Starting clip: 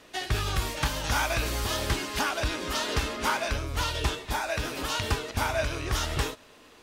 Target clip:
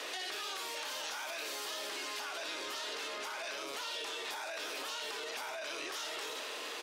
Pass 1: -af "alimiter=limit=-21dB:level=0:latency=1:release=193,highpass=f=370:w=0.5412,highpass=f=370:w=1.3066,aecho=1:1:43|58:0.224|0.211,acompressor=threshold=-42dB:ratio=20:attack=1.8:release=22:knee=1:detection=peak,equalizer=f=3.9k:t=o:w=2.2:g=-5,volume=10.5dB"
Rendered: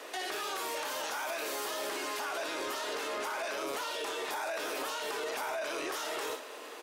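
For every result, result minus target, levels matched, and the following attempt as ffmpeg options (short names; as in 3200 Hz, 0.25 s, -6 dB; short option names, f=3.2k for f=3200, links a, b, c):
compressor: peak gain reduction -8.5 dB; 4000 Hz band -4.0 dB
-af "alimiter=limit=-21dB:level=0:latency=1:release=193,highpass=f=370:w=0.5412,highpass=f=370:w=1.3066,aecho=1:1:43|58:0.224|0.211,acompressor=threshold=-51dB:ratio=20:attack=1.8:release=22:knee=1:detection=peak,equalizer=f=3.9k:t=o:w=2.2:g=-5,volume=10.5dB"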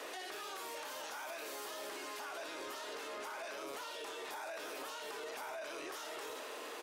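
4000 Hz band -4.0 dB
-af "alimiter=limit=-21dB:level=0:latency=1:release=193,highpass=f=370:w=0.5412,highpass=f=370:w=1.3066,aecho=1:1:43|58:0.224|0.211,acompressor=threshold=-51dB:ratio=20:attack=1.8:release=22:knee=1:detection=peak,equalizer=f=3.9k:t=o:w=2.2:g=4.5,volume=10.5dB"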